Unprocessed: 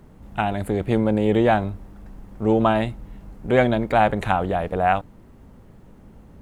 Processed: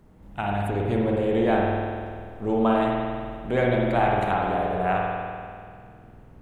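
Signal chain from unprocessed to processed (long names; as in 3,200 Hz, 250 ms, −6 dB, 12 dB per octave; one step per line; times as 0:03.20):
spring reverb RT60 2.1 s, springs 49 ms, chirp 55 ms, DRR −2.5 dB
level −7 dB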